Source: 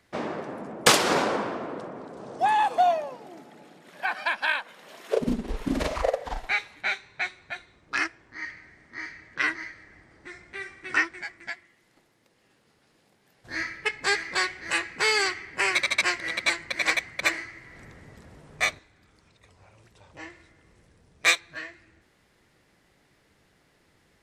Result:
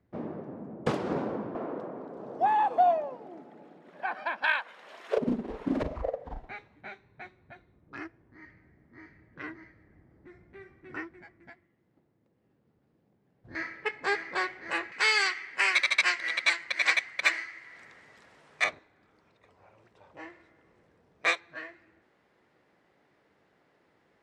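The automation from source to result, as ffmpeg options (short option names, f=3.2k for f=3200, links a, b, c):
-af "asetnsamples=n=441:p=0,asendcmd='1.55 bandpass f 390;4.44 bandpass f 1200;5.18 bandpass f 490;5.83 bandpass f 130;13.55 bandpass f 590;14.92 bandpass f 2200;18.64 bandpass f 640',bandpass=f=120:t=q:w=0.51:csg=0"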